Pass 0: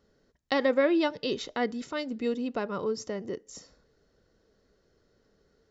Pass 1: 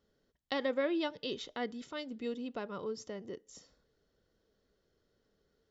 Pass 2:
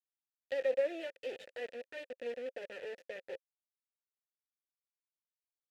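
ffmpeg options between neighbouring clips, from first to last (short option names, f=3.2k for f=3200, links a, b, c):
-af "equalizer=f=3.3k:t=o:w=0.33:g=7,volume=-8.5dB"
-filter_complex "[0:a]aeval=exprs='0.0891*(cos(1*acos(clip(val(0)/0.0891,-1,1)))-cos(1*PI/2))+0.00355*(cos(4*acos(clip(val(0)/0.0891,-1,1)))-cos(4*PI/2))':c=same,acrusher=bits=4:dc=4:mix=0:aa=0.000001,asplit=3[a][b][c];[a]bandpass=f=530:t=q:w=8,volume=0dB[d];[b]bandpass=f=1.84k:t=q:w=8,volume=-6dB[e];[c]bandpass=f=2.48k:t=q:w=8,volume=-9dB[f];[d][e][f]amix=inputs=3:normalize=0,volume=11dB"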